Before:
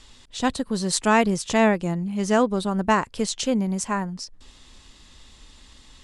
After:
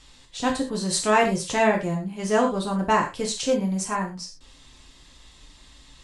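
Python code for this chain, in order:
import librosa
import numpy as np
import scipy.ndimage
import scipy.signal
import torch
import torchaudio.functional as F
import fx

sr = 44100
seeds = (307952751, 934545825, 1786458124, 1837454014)

y = fx.rev_gated(x, sr, seeds[0], gate_ms=140, shape='falling', drr_db=-0.5)
y = y * librosa.db_to_amplitude(-3.5)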